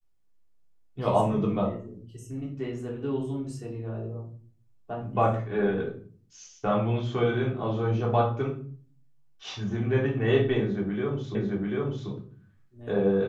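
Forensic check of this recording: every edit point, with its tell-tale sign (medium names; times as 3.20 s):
11.35 s: repeat of the last 0.74 s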